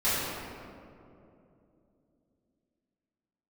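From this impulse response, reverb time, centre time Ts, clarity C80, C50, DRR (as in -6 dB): 2.8 s, 0.157 s, -1.0 dB, -3.5 dB, -14.0 dB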